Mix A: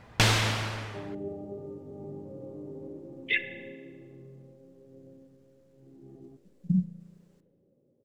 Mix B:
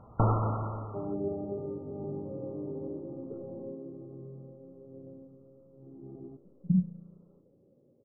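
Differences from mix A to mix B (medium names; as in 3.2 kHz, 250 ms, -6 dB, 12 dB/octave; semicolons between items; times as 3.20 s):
second sound +4.0 dB; master: add brick-wall FIR low-pass 1.4 kHz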